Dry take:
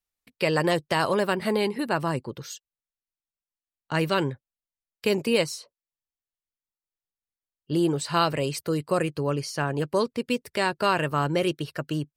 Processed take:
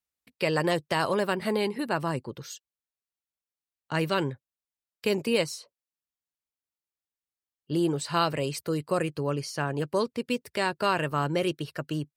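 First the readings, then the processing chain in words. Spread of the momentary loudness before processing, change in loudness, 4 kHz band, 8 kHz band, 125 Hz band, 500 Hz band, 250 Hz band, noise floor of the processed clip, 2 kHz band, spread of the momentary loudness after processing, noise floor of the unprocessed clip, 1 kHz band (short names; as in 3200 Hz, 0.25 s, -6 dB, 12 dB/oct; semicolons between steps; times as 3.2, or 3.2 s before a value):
8 LU, -2.5 dB, -2.5 dB, -2.5 dB, -2.5 dB, -2.5 dB, -2.5 dB, under -85 dBFS, -2.5 dB, 8 LU, under -85 dBFS, -2.5 dB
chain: HPF 45 Hz; gain -2.5 dB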